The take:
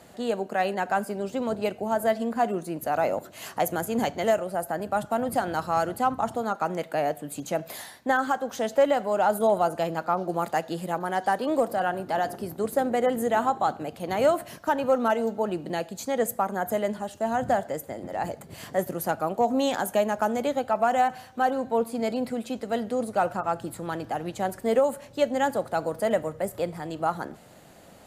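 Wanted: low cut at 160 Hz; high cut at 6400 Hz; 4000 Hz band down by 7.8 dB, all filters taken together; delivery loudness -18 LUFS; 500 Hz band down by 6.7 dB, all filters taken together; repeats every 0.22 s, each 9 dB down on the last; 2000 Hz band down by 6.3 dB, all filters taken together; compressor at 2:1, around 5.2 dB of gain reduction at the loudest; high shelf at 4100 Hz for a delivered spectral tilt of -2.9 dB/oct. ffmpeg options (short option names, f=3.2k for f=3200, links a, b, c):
-af "highpass=160,lowpass=6.4k,equalizer=f=500:t=o:g=-8,equalizer=f=2k:t=o:g=-6.5,equalizer=f=4k:t=o:g=-5,highshelf=f=4.1k:g=-4,acompressor=threshold=-32dB:ratio=2,aecho=1:1:220|440|660|880:0.355|0.124|0.0435|0.0152,volume=17dB"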